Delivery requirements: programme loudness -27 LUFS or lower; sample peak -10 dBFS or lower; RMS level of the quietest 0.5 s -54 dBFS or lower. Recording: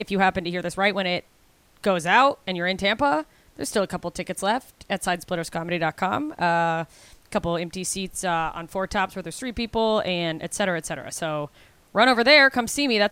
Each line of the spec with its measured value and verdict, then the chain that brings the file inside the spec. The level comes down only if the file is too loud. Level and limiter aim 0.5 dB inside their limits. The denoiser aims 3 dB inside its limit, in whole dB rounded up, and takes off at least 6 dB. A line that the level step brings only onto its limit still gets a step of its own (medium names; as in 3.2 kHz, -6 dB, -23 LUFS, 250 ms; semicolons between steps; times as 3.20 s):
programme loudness -23.5 LUFS: fail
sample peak -3.5 dBFS: fail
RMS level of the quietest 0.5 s -58 dBFS: pass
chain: trim -4 dB; peak limiter -10.5 dBFS